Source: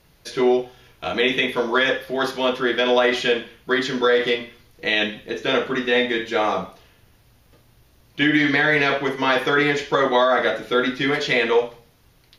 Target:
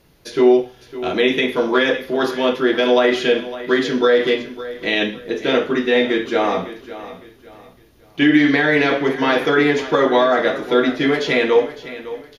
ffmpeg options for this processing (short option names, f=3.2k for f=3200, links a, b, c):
-filter_complex "[0:a]equalizer=f=320:t=o:w=1.5:g=6.5,asplit=2[a][b];[b]aecho=0:1:557|1114|1671:0.178|0.0569|0.0182[c];[a][c]amix=inputs=2:normalize=0"